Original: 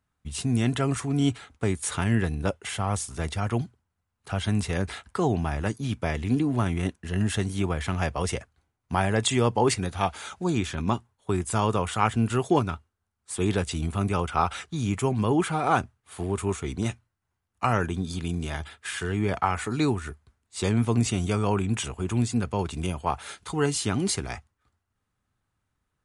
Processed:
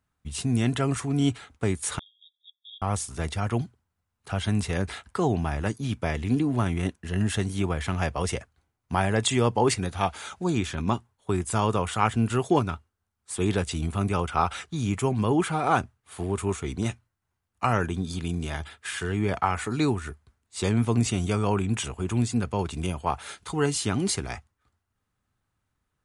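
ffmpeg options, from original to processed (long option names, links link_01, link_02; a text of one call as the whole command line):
ffmpeg -i in.wav -filter_complex "[0:a]asettb=1/sr,asplit=3[link_01][link_02][link_03];[link_01]atrim=end=1.994[link_04];[link_02]atrim=start=1.99:end=2.82,asetpts=PTS-STARTPTS,afade=type=in:duration=0.004:curve=qsin,afade=type=out:start_time=0.826:duration=0.004:curve=qsin,asuperpass=centerf=3500:order=20:qfactor=6.3[link_05];[link_03]atrim=start=2.816[link_06];[link_04][link_05]acrossfade=duration=0.004:curve1=hsin:curve2=qsin[link_07];[link_07][link_06]acrossfade=duration=0.004:curve1=qsin:curve2=hsin" out.wav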